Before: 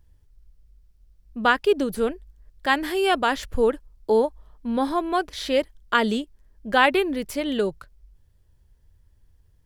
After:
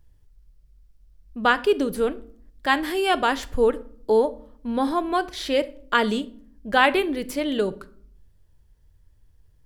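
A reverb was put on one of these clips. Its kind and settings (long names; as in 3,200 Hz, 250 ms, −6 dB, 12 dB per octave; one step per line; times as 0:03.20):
rectangular room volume 780 cubic metres, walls furnished, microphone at 0.49 metres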